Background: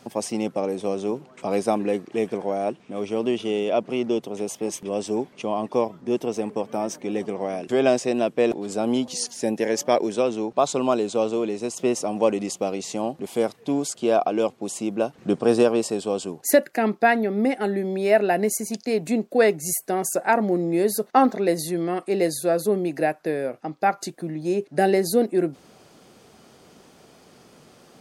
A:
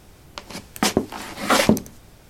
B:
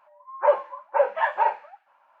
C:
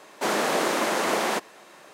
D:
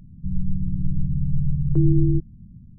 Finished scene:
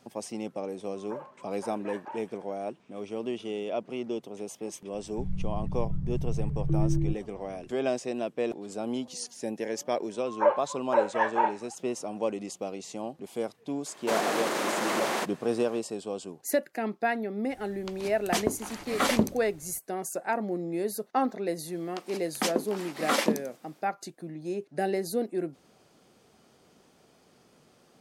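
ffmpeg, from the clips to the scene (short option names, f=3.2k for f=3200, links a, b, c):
-filter_complex "[2:a]asplit=2[a][b];[1:a]asplit=2[c][d];[0:a]volume=-9.5dB[e];[a]alimiter=limit=-16dB:level=0:latency=1:release=54[f];[3:a]alimiter=limit=-16.5dB:level=0:latency=1:release=42[g];[c]bandreject=f=5.2k:w=20[h];[d]highpass=f=200:w=0.5412,highpass=f=200:w=1.3066[i];[f]atrim=end=2.2,asetpts=PTS-STARTPTS,volume=-16.5dB,afade=t=in:d=0.004:c=hsin,afade=t=out:st=2.196:d=0.004:c=hsin,adelay=680[j];[4:a]atrim=end=2.78,asetpts=PTS-STARTPTS,volume=-8.5dB,afade=t=in:d=0.004:c=hsin,afade=t=out:st=2.776:d=0.004:c=hsin,adelay=4940[k];[b]atrim=end=2.2,asetpts=PTS-STARTPTS,volume=-3.5dB,afade=t=in:d=0.004:c=hsin,afade=t=out:st=2.196:d=0.004:c=hsin,adelay=9980[l];[g]atrim=end=1.93,asetpts=PTS-STARTPTS,volume=-3dB,afade=t=in:d=0.004:c=hsin,afade=t=out:st=1.926:d=0.004:c=hsin,adelay=13860[m];[h]atrim=end=2.29,asetpts=PTS-STARTPTS,volume=-8.5dB,afade=t=in:d=0.004:c=hsin,afade=t=out:st=2.286:d=0.004:c=hsin,adelay=17500[n];[i]atrim=end=2.29,asetpts=PTS-STARTPTS,volume=-8.5dB,afade=t=in:d=0.1,afade=t=out:st=2.19:d=0.1,adelay=21590[o];[e][j][k][l][m][n][o]amix=inputs=7:normalize=0"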